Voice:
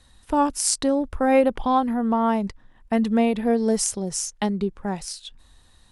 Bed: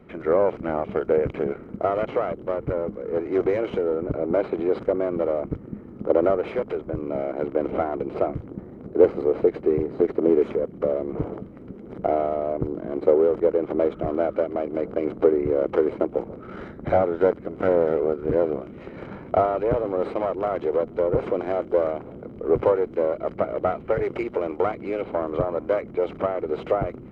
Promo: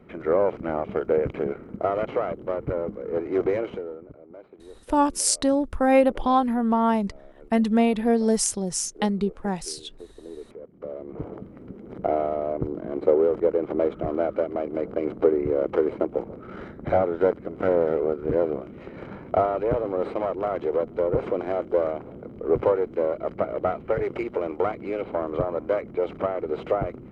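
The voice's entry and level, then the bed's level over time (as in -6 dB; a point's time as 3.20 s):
4.60 s, 0.0 dB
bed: 3.58 s -1.5 dB
4.23 s -23 dB
10.23 s -23 dB
11.51 s -1.5 dB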